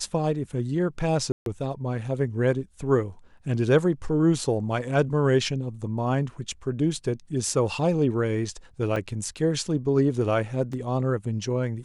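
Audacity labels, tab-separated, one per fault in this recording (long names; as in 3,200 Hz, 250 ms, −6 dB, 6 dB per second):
1.320000	1.460000	drop-out 142 ms
8.960000	8.960000	drop-out 3.4 ms
10.730000	10.730000	drop-out 3.5 ms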